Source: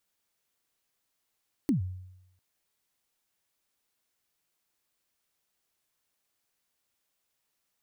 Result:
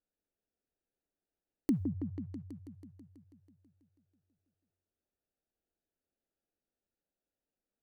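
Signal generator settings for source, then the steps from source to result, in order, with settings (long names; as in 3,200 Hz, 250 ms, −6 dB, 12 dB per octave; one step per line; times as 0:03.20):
synth kick length 0.70 s, from 320 Hz, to 92 Hz, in 119 ms, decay 0.87 s, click on, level −20 dB
adaptive Wiener filter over 41 samples
parametric band 120 Hz −9.5 dB 0.91 octaves
on a send: echo whose low-pass opens from repeat to repeat 163 ms, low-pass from 750 Hz, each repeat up 1 octave, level −6 dB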